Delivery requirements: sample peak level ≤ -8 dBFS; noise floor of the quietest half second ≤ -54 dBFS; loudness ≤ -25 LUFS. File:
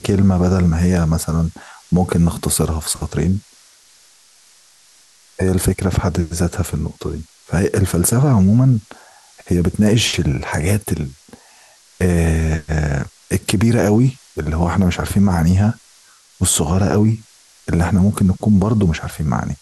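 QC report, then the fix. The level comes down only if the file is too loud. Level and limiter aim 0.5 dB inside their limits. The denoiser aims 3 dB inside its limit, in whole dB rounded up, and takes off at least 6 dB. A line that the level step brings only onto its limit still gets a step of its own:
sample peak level -4.5 dBFS: fail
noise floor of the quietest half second -50 dBFS: fail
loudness -17.5 LUFS: fail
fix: gain -8 dB

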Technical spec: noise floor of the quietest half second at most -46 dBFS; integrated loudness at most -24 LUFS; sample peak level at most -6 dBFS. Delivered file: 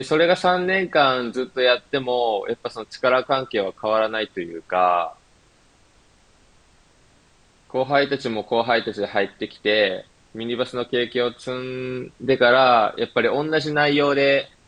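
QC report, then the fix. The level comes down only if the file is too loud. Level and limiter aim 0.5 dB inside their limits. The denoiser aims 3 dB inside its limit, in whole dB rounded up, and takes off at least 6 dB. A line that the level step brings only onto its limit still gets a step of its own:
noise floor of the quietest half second -56 dBFS: OK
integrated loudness -21.0 LUFS: fail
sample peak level -5.5 dBFS: fail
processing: gain -3.5 dB

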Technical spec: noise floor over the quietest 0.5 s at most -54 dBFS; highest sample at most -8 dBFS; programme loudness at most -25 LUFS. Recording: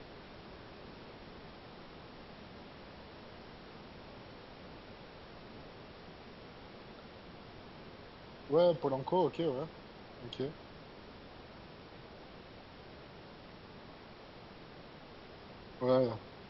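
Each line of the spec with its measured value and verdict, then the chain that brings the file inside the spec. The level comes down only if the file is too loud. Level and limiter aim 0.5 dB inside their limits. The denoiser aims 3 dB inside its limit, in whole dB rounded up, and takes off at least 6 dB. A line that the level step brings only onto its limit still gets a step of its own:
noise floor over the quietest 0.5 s -53 dBFS: fail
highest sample -17.5 dBFS: OK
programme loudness -33.5 LUFS: OK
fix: denoiser 6 dB, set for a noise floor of -53 dBFS

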